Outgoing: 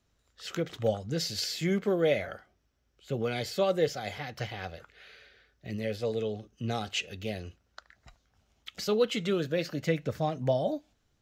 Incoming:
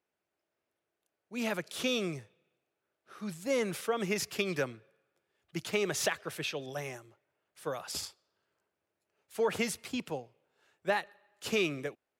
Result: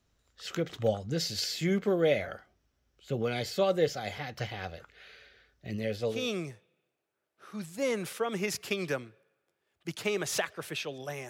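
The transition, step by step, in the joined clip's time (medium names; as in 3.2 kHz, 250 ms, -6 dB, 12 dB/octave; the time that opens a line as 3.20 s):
outgoing
6.18 s: go over to incoming from 1.86 s, crossfade 0.22 s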